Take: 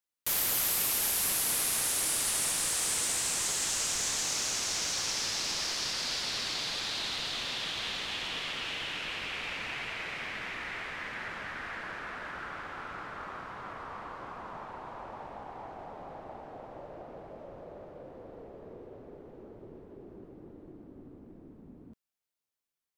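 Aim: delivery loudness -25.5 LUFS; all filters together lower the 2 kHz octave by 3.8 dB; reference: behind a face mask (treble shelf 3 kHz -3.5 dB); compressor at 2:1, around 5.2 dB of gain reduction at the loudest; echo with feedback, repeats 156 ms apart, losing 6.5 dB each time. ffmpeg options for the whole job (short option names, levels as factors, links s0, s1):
-af "equalizer=f=2000:t=o:g=-3.5,acompressor=threshold=0.0158:ratio=2,highshelf=f=3000:g=-3.5,aecho=1:1:156|312|468|624|780|936:0.473|0.222|0.105|0.0491|0.0231|0.0109,volume=3.98"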